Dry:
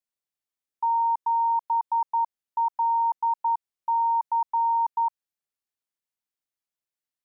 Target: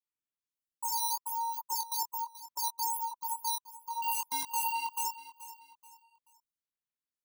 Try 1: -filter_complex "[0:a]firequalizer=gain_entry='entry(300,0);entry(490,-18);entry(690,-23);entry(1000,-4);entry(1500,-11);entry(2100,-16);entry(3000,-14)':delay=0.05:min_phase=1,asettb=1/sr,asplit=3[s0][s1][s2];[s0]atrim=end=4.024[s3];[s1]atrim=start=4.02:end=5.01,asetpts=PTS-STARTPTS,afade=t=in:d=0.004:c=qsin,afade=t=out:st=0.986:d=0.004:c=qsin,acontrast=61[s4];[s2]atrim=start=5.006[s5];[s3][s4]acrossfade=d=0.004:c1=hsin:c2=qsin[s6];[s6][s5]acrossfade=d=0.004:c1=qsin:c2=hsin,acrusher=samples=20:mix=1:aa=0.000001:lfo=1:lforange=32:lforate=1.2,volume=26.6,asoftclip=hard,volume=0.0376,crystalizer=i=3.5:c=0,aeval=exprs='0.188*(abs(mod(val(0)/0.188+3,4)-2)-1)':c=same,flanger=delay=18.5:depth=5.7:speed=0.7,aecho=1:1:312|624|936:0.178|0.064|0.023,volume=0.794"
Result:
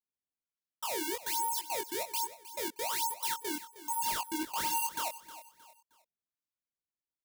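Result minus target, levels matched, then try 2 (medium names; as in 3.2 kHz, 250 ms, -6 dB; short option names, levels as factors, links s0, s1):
decimation with a swept rate: distortion +16 dB; echo 119 ms early
-filter_complex "[0:a]firequalizer=gain_entry='entry(300,0);entry(490,-18);entry(690,-23);entry(1000,-4);entry(1500,-11);entry(2100,-16);entry(3000,-14)':delay=0.05:min_phase=1,asettb=1/sr,asplit=3[s0][s1][s2];[s0]atrim=end=4.024[s3];[s1]atrim=start=4.02:end=5.01,asetpts=PTS-STARTPTS,afade=t=in:d=0.004:c=qsin,afade=t=out:st=0.986:d=0.004:c=qsin,acontrast=61[s4];[s2]atrim=start=5.006[s5];[s3][s4]acrossfade=d=0.004:c1=hsin:c2=qsin[s6];[s6][s5]acrossfade=d=0.004:c1=qsin:c2=hsin,acrusher=samples=5:mix=1:aa=0.000001:lfo=1:lforange=8:lforate=1.2,volume=26.6,asoftclip=hard,volume=0.0376,crystalizer=i=3.5:c=0,aeval=exprs='0.188*(abs(mod(val(0)/0.188+3,4)-2)-1)':c=same,flanger=delay=18.5:depth=5.7:speed=0.7,aecho=1:1:431|862|1293:0.178|0.064|0.023,volume=0.794"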